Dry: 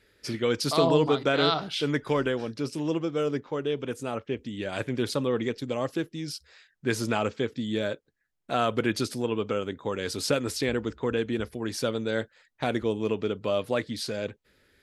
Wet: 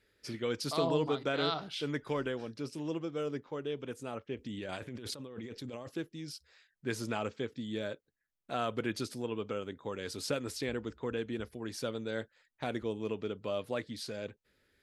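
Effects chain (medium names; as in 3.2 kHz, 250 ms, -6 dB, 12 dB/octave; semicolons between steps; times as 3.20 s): 4.37–5.89 s: compressor with a negative ratio -34 dBFS, ratio -1; trim -8.5 dB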